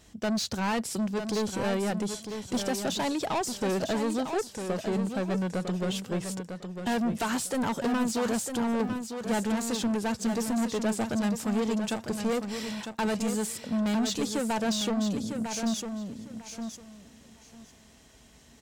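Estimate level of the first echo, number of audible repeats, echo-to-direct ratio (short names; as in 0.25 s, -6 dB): -7.5 dB, 2, -7.5 dB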